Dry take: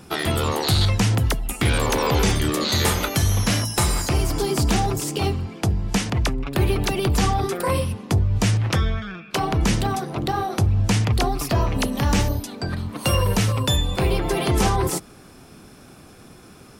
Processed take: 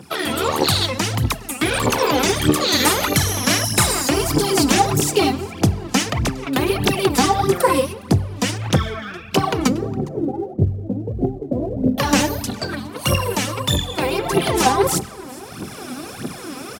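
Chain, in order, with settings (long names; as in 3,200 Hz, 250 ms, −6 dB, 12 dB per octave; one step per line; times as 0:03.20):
0:09.67–0:11.98: Butterworth low-pass 580 Hz 36 dB per octave
single-tap delay 412 ms −23.5 dB
convolution reverb RT60 2.2 s, pre-delay 4 ms, DRR 17 dB
phase shifter 1.6 Hz, delay 4.1 ms, feedback 71%
automatic gain control gain up to 13 dB
high-pass filter 140 Hz 12 dB per octave
level −1 dB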